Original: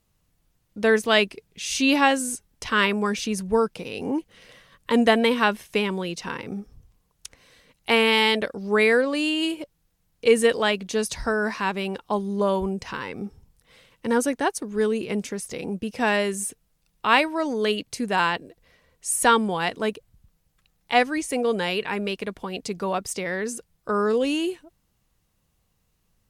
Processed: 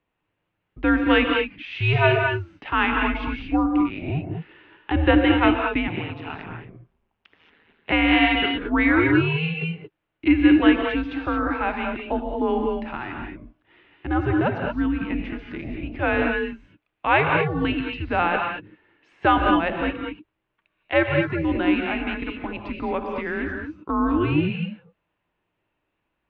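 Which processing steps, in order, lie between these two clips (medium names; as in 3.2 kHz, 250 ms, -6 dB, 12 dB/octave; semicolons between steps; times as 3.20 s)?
gated-style reverb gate 250 ms rising, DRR 2 dB; 5.87–7.92 s: ring modulator 79 Hz; mistuned SSB -160 Hz 240–3100 Hz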